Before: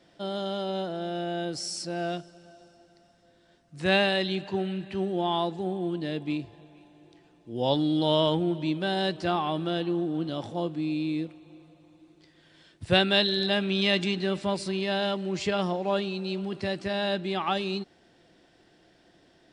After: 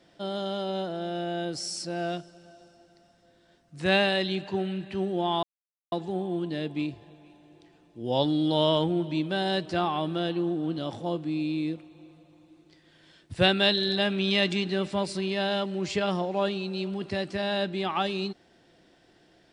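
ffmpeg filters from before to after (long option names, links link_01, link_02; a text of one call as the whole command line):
ffmpeg -i in.wav -filter_complex "[0:a]asplit=2[link_01][link_02];[link_01]atrim=end=5.43,asetpts=PTS-STARTPTS,afade=type=out:start_time=5.426:duration=0.004:curve=hsin,apad=pad_dur=0.49[link_03];[link_02]atrim=start=5.43,asetpts=PTS-STARTPTS,afade=type=in:duration=0.004:curve=hsin[link_04];[link_03][link_04]concat=n=2:v=0:a=1" out.wav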